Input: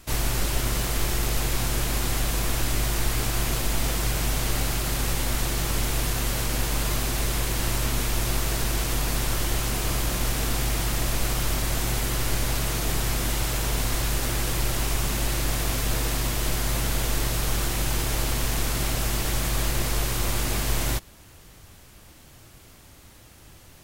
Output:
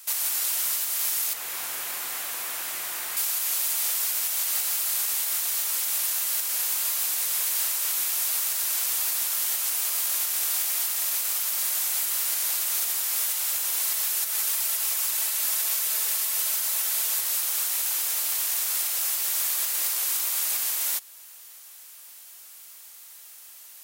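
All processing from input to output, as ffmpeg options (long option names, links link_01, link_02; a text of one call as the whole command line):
ffmpeg -i in.wav -filter_complex "[0:a]asettb=1/sr,asplit=3[link_01][link_02][link_03];[link_01]atrim=end=1.334[link_04];[link_02]atrim=start=1.33:end=3.17,asetpts=PTS-STARTPTS,afade=type=in:duration=0.004:curve=qsin,afade=type=out:start_time=1.836:duration=0.004:curve=qsin,highpass=75,acrossover=split=2700[link_05][link_06];[link_06]acompressor=threshold=-39dB:ratio=4:attack=1:release=60[link_07];[link_05][link_07]amix=inputs=2:normalize=0,lowshelf=frequency=130:gain=10.5[link_08];[link_03]atrim=start=3.166[link_09];[link_04][link_08]acrossfade=duration=0.004:curve1=hsin:curve2=qsin[link_10];[link_10][link_09]acrossfade=duration=0.004:curve1=qsin:curve2=hsin,asettb=1/sr,asplit=3[link_11][link_12][link_13];[link_11]atrim=end=13.804[link_14];[link_12]atrim=start=13.8:end=17.22,asetpts=PTS-STARTPTS,afade=type=in:duration=0.004:curve=qsin,afade=type=out:start_time=3.416:duration=0.004:curve=qsin,highpass=frequency=110:poles=1,aecho=1:1:4.6:0.57,atrim=end_sample=150822[link_15];[link_13]atrim=start=17.216[link_16];[link_14][link_15]acrossfade=duration=0.004:curve1=hsin:curve2=qsin[link_17];[link_17][link_16]acrossfade=duration=0.004:curve1=qsin:curve2=hsin,highpass=860,aemphasis=mode=production:type=75kf,alimiter=limit=-11dB:level=0:latency=1:release=255,volume=-4.5dB" out.wav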